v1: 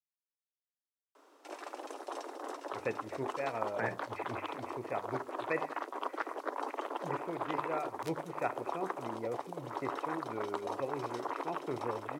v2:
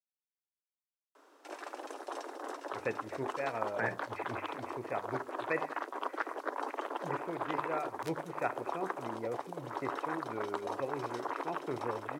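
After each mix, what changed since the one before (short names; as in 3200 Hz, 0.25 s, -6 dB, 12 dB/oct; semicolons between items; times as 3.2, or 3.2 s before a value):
master: add bell 1600 Hz +4 dB 0.37 oct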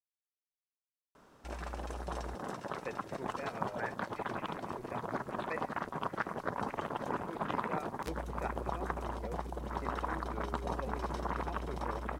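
speech -6.5 dB; background: remove steep high-pass 270 Hz 96 dB/oct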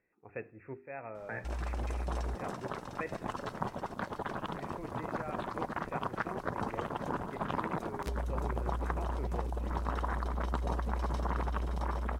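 speech: entry -2.50 s; master: add low shelf 91 Hz +11 dB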